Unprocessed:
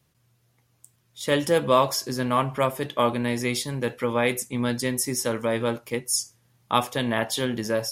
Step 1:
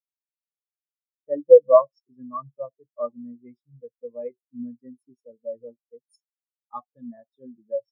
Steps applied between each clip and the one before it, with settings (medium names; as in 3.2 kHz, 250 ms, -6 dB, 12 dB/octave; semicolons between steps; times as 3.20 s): spectral contrast expander 4:1; trim +4.5 dB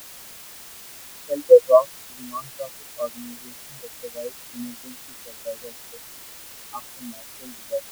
added noise white -42 dBFS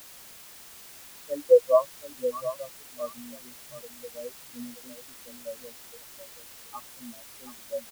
delay 726 ms -12 dB; trim -6 dB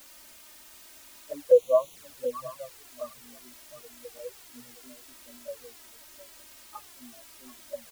touch-sensitive flanger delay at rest 4 ms, full sweep at -22.5 dBFS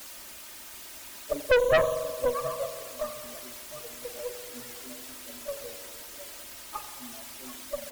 spring tank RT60 1.7 s, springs 43 ms, chirp 75 ms, DRR 6.5 dB; valve stage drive 22 dB, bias 0.45; harmonic-percussive split percussive +8 dB; trim +4.5 dB